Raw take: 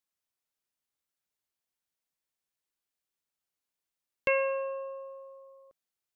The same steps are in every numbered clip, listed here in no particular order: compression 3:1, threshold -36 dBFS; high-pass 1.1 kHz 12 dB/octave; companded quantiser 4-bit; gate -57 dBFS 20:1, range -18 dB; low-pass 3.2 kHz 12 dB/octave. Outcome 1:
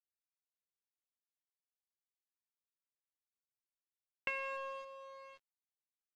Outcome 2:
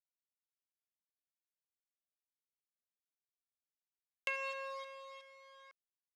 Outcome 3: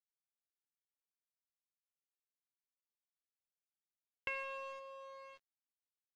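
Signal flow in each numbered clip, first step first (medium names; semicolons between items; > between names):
high-pass > compression > companded quantiser > gate > low-pass; companded quantiser > low-pass > gate > high-pass > compression; compression > high-pass > companded quantiser > gate > low-pass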